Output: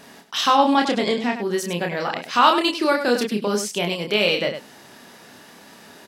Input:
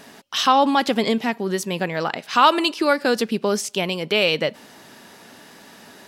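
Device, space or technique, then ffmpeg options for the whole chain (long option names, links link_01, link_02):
slapback doubling: -filter_complex "[0:a]asettb=1/sr,asplit=3[link_01][link_02][link_03];[link_01]atrim=end=0.774[link_04];[link_02]atrim=start=0.77:end=1.36,asetpts=PTS-STARTPTS,afade=type=in:duration=0.004:curve=qsin,afade=type=out:start_time=0.586:duration=0.004:curve=qsin,lowpass=frequency=9600:width=0.5412,lowpass=frequency=9600:width=1.3066[link_05];[link_03]atrim=start=1.356[link_06];[link_04][link_05]acrossfade=duration=0.004:curve1=hsin:curve2=qsin[link_07];[link_07][link_06]acrossfade=duration=0.004:curve1=qsin:curve2=hsin,asplit=3[link_08][link_09][link_10];[link_09]adelay=29,volume=-4dB[link_11];[link_10]adelay=101,volume=-9dB[link_12];[link_08][link_11][link_12]amix=inputs=3:normalize=0,volume=-2dB"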